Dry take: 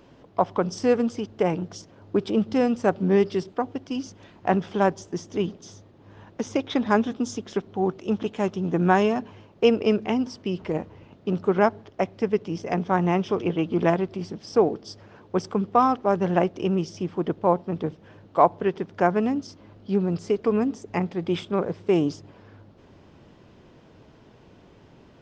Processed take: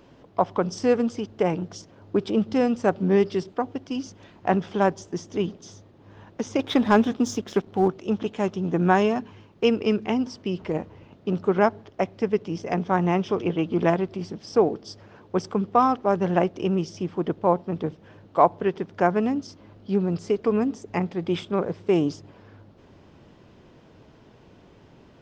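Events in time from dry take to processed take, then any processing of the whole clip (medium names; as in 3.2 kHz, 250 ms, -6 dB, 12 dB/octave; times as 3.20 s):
6.59–7.88 s: waveshaping leveller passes 1
9.18–10.08 s: peaking EQ 620 Hz -6 dB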